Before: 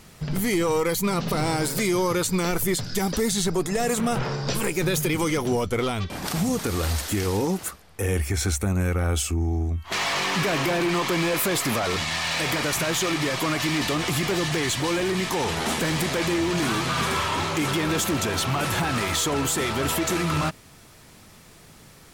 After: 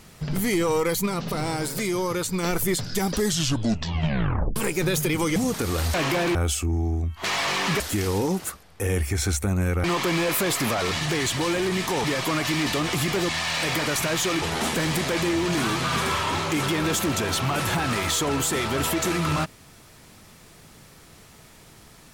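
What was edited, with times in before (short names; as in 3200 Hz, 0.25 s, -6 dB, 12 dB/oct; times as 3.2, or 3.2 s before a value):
1.06–2.43 gain -3 dB
3.14 tape stop 1.42 s
5.36–6.41 cut
6.99–9.03 swap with 10.48–10.89
12.06–13.19 swap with 14.44–15.47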